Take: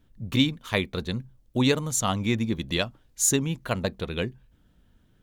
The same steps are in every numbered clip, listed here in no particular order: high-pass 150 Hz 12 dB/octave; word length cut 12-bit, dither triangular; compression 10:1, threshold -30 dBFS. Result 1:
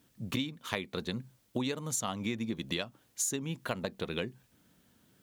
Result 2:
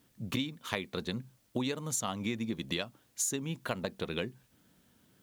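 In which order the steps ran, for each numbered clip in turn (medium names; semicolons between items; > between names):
word length cut > high-pass > compression; high-pass > compression > word length cut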